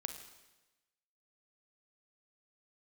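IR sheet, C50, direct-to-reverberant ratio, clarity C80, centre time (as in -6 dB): 8.0 dB, 6.5 dB, 10.0 dB, 21 ms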